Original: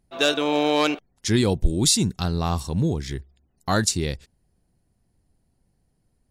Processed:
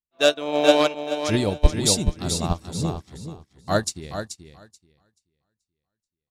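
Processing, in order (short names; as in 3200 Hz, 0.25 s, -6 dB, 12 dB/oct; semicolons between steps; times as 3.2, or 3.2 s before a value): feedback echo 0.432 s, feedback 48%, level -3.5 dB; dynamic EQ 620 Hz, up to +8 dB, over -40 dBFS, Q 4.4; upward expander 2.5:1, over -39 dBFS; gain +5 dB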